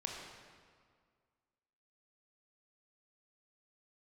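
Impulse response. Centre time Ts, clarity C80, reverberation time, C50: 80 ms, 3.0 dB, 1.9 s, 1.5 dB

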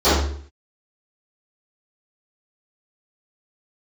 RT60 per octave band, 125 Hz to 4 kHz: 0.60 s, 0.60 s, 0.60 s, 0.50 s, 0.50 s, 0.45 s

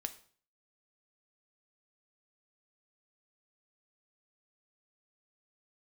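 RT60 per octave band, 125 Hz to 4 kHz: 0.60 s, 0.50 s, 0.50 s, 0.45 s, 0.45 s, 0.45 s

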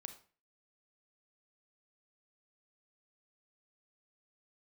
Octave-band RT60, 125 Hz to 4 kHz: 0.45 s, 0.45 s, 0.40 s, 0.40 s, 0.40 s, 0.35 s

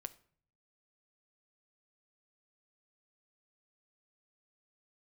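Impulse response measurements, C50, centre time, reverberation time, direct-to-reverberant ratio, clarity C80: 18.5 dB, 3 ms, 0.50 s, 10.0 dB, 22.5 dB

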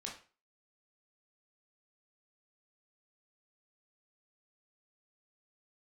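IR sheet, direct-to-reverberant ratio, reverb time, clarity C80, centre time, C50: -2.0 dB, 0.35 s, 12.5 dB, 28 ms, 6.5 dB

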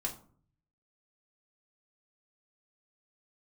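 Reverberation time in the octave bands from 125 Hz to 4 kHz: 1.0 s, 0.70 s, 0.50 s, 0.45 s, 0.30 s, 0.25 s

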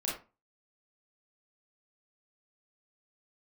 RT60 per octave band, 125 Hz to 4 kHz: 0.40 s, 0.35 s, 0.30 s, 0.30 s, 0.25 s, 0.20 s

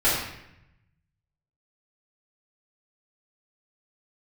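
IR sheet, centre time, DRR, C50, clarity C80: 61 ms, -10.5 dB, 1.0 dB, 4.0 dB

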